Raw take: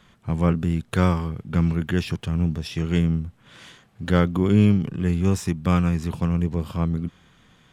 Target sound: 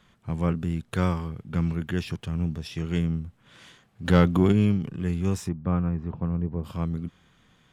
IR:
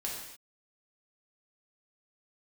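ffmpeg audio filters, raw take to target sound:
-filter_complex "[0:a]asplit=3[s0][s1][s2];[s0]afade=t=out:st=4.04:d=0.02[s3];[s1]acontrast=82,afade=t=in:st=4.04:d=0.02,afade=t=out:st=4.51:d=0.02[s4];[s2]afade=t=in:st=4.51:d=0.02[s5];[s3][s4][s5]amix=inputs=3:normalize=0,asplit=3[s6][s7][s8];[s6]afade=t=out:st=5.47:d=0.02[s9];[s7]lowpass=1200,afade=t=in:st=5.47:d=0.02,afade=t=out:st=6.63:d=0.02[s10];[s8]afade=t=in:st=6.63:d=0.02[s11];[s9][s10][s11]amix=inputs=3:normalize=0,volume=0.562"

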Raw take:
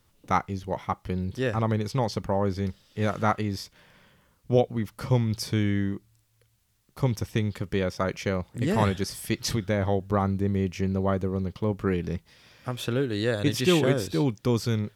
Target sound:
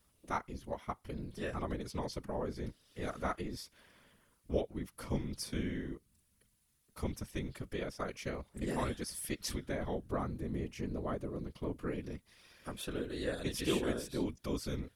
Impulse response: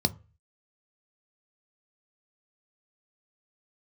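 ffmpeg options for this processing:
-filter_complex "[0:a]asplit=2[s0][s1];[s1]acompressor=threshold=0.0112:ratio=6,volume=1.06[s2];[s0][s2]amix=inputs=2:normalize=0,afftfilt=real='hypot(re,im)*cos(2*PI*random(0))':imag='hypot(re,im)*sin(2*PI*random(1))':win_size=512:overlap=0.75,equalizer=f=100:t=o:w=0.33:g=-6,equalizer=f=160:t=o:w=0.33:g=-6,equalizer=f=800:t=o:w=0.33:g=-3,equalizer=f=10000:t=o:w=0.33:g=10,volume=0.473"

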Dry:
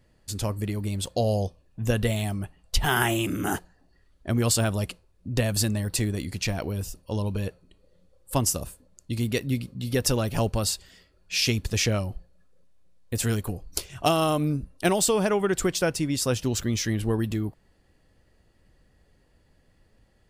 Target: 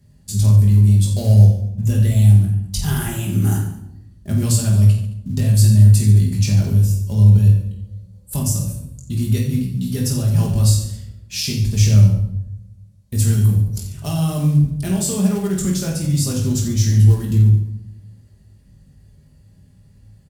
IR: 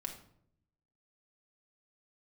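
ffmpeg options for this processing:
-filter_complex "[0:a]asplit=2[s0][s1];[s1]acompressor=threshold=0.0178:ratio=6,volume=0.891[s2];[s0][s2]amix=inputs=2:normalize=0,alimiter=limit=0.266:level=0:latency=1:release=449,aecho=1:1:20|48|87.2|142.1|218.9:0.631|0.398|0.251|0.158|0.1,acrossover=split=240|3700[s3][s4][s5];[s3]acontrast=29[s6];[s4]acrusher=bits=4:mode=log:mix=0:aa=0.000001[s7];[s6][s7][s5]amix=inputs=3:normalize=0,highpass=71,bass=f=250:g=13,treble=f=4000:g=11[s8];[1:a]atrim=start_sample=2205,asetrate=33957,aresample=44100[s9];[s8][s9]afir=irnorm=-1:irlink=0,volume=0.376"

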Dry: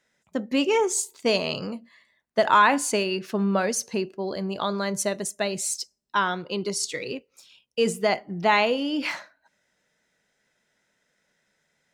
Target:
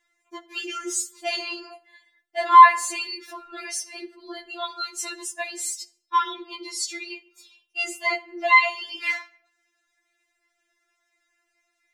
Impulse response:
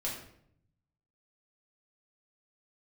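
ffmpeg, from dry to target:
-filter_complex "[0:a]equalizer=f=2100:w=1.5:g=3.5,asplit=2[s0][s1];[1:a]atrim=start_sample=2205,lowshelf=f=370:g=-10.5[s2];[s1][s2]afir=irnorm=-1:irlink=0,volume=0.178[s3];[s0][s3]amix=inputs=2:normalize=0,afftfilt=real='re*4*eq(mod(b,16),0)':imag='im*4*eq(mod(b,16),0)':win_size=2048:overlap=0.75"

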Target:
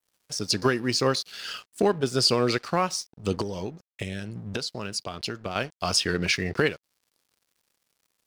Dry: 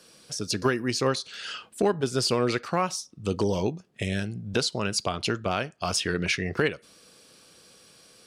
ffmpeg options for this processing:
-filter_complex "[0:a]aeval=exprs='sgn(val(0))*max(abs(val(0))-0.00398,0)':c=same,adynamicequalizer=threshold=0.00562:dfrequency=4800:dqfactor=3.4:tfrequency=4800:tqfactor=3.4:attack=5:release=100:ratio=0.375:range=3:mode=boostabove:tftype=bell,asettb=1/sr,asplit=3[s0][s1][s2];[s0]atrim=end=3.414[s3];[s1]atrim=start=3.41:end=5.56,asetpts=PTS-STARTPTS,afade=t=in:d=0.004:c=qsin,afade=t=out:st=2.146:d=0.004:c=qsin,acompressor=threshold=0.0316:ratio=6[s4];[s2]atrim=start=5.556[s5];[s3][s4]acrossfade=d=0.004:c1=hsin:c2=qsin[s6];[s6][s5]acrossfade=d=0.004:c1=qsin:c2=hsin,volume=1.19"

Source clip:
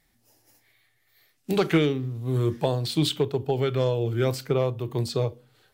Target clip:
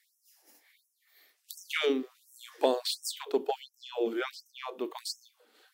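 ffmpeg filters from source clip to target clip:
-filter_complex "[0:a]asettb=1/sr,asplit=3[s0][s1][s2];[s0]atrim=end=3.564[s3];[s1]atrim=start=3.56:end=4.96,asetpts=PTS-STARTPTS,afade=t=in:d=0.004:c=qsin,afade=t=out:st=1.396:d=0.004:c=qsin,acrossover=split=3900[s4][s5];[s5]acompressor=threshold=0.00126:ratio=4:attack=1:release=60[s6];[s4][s6]amix=inputs=2:normalize=0[s7];[s2]atrim=start=4.956[s8];[s3][s7]acrossfade=d=0.004:c1=hsin:c2=qsin[s9];[s9][s8]acrossfade=d=0.004:c1=qsin:c2=hsin,afftfilt=real='re*gte(b*sr/1024,200*pow(5400/200,0.5+0.5*sin(2*PI*1.4*pts/sr)))':imag='im*gte(b*sr/1024,200*pow(5400/200,0.5+0.5*sin(2*PI*1.4*pts/sr)))':win_size=1024:overlap=0.75"

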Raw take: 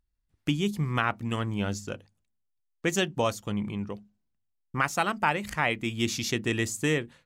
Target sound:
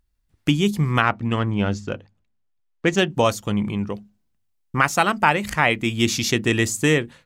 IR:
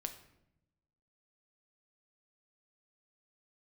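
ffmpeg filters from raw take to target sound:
-filter_complex "[0:a]asettb=1/sr,asplit=3[s0][s1][s2];[s0]atrim=end=1.024[s3];[s1]atrim=start=1.02:end=3.1,asetpts=PTS-STARTPTS,afade=t=in:d=0.004:c=qsin,afade=t=out:st=2.076:d=0.004:c=qsin,adynamicsmooth=sensitivity=1:basefreq=4100[s4];[s2]atrim=start=3.096[s5];[s3][s4]acrossfade=d=0.004:c1=hsin:c2=qsin[s6];[s6][s5]acrossfade=d=0.004:c1=qsin:c2=hsin,volume=2.51"

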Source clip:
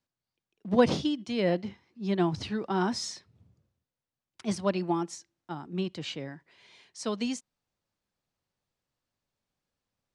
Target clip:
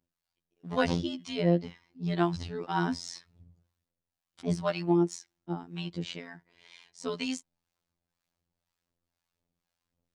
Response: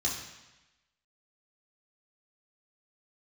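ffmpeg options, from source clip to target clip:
-filter_complex "[0:a]aphaser=in_gain=1:out_gain=1:delay=1.5:decay=0.34:speed=1.8:type=triangular,acrossover=split=690[s0][s1];[s0]aeval=exprs='val(0)*(1-0.7/2+0.7/2*cos(2*PI*2*n/s))':c=same[s2];[s1]aeval=exprs='val(0)*(1-0.7/2-0.7/2*cos(2*PI*2*n/s))':c=same[s3];[s2][s3]amix=inputs=2:normalize=0,afftfilt=real='hypot(re,im)*cos(PI*b)':imag='0':win_size=2048:overlap=0.75,volume=1.88"

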